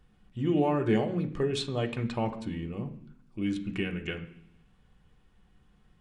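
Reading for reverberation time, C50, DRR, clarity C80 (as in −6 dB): 0.70 s, 12.0 dB, 3.0 dB, 15.0 dB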